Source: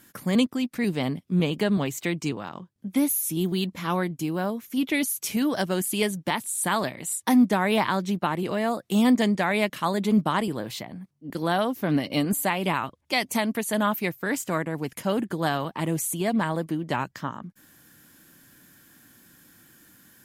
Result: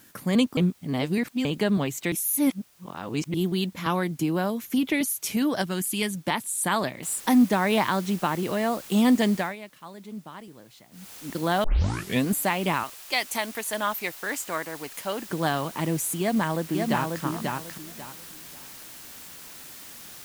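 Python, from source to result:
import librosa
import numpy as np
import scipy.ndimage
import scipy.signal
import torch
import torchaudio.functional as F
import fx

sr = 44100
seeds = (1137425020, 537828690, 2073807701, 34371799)

y = fx.band_squash(x, sr, depth_pct=100, at=(3.86, 5.01))
y = fx.peak_eq(y, sr, hz=560.0, db=-8.5, octaves=1.3, at=(5.62, 6.15))
y = fx.noise_floor_step(y, sr, seeds[0], at_s=7.03, before_db=-60, after_db=-44, tilt_db=0.0)
y = fx.peak_eq(y, sr, hz=150.0, db=-14.5, octaves=2.4, at=(12.83, 15.29))
y = fx.echo_throw(y, sr, start_s=16.2, length_s=1.03, ms=540, feedback_pct=25, wet_db=-3.5)
y = fx.edit(y, sr, fx.reverse_span(start_s=0.57, length_s=0.88),
    fx.reverse_span(start_s=2.12, length_s=1.22),
    fx.fade_down_up(start_s=9.35, length_s=1.77, db=-17.5, fade_s=0.21),
    fx.tape_start(start_s=11.64, length_s=0.62), tone=tone)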